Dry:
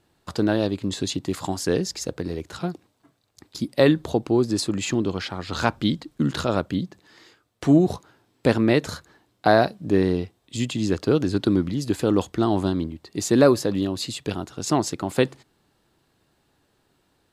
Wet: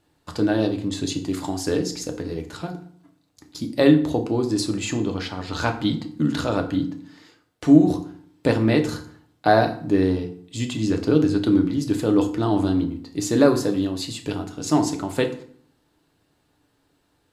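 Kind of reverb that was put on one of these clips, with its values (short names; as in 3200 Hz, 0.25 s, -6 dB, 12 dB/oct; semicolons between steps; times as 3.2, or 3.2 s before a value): FDN reverb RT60 0.55 s, low-frequency decay 1.3×, high-frequency decay 0.75×, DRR 4 dB; gain -2 dB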